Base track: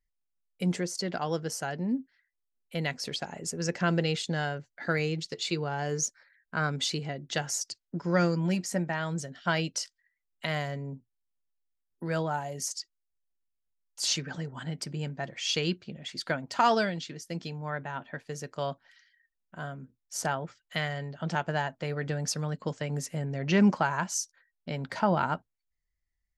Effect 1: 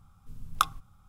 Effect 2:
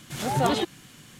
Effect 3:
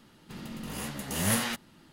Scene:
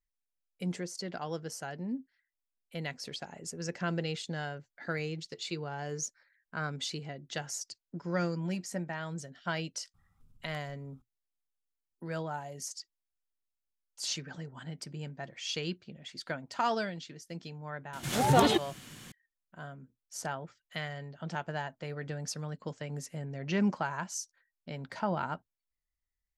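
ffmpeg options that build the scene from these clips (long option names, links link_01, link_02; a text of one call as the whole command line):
ffmpeg -i bed.wav -i cue0.wav -i cue1.wav -filter_complex "[0:a]volume=-6.5dB[link_01];[1:a]acompressor=threshold=-47dB:ratio=12:attack=61:release=119:knee=1:detection=rms,atrim=end=1.08,asetpts=PTS-STARTPTS,volume=-11.5dB,afade=type=in:duration=0.004:curve=hsin,afade=type=out:start_time=1.076:duration=0.004:curve=hsin,adelay=438354S[link_02];[2:a]atrim=end=1.19,asetpts=PTS-STARTPTS,afade=type=in:duration=0.004:curve=hsin,afade=type=out:start_time=1.186:duration=0.004:curve=hsin,adelay=17930[link_03];[link_01][link_02][link_03]amix=inputs=3:normalize=0" out.wav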